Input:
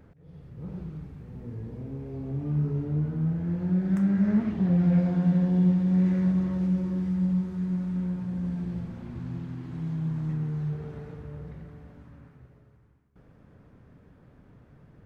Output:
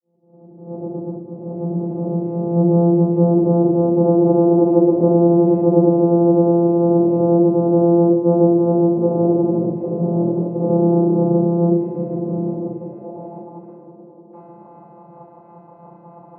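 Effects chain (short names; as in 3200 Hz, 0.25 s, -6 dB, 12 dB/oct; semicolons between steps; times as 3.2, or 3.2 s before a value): opening faded in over 2.79 s; HPF 140 Hz 12 dB/oct; frequency shift +140 Hz; fifteen-band EQ 250 Hz +11 dB, 630 Hz +6 dB, 1600 Hz -11 dB; in parallel at +1.5 dB: compressor, threshold -33 dBFS, peak gain reduction 17.5 dB; on the sum: limiter -16 dBFS, peak gain reduction 7.5 dB; vocoder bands 4, saw 186 Hz; reverb removal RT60 0.87 s; band-pass sweep 410 Hz -> 1100 Hz, 11.64–12.56; on a send: band-limited delay 0.284 s, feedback 76%, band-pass 520 Hz, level -11 dB; on the sum: shoebox room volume 290 m³, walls furnished, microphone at 6.5 m; speed mistake 48 kHz file played as 44.1 kHz; gain +7.5 dB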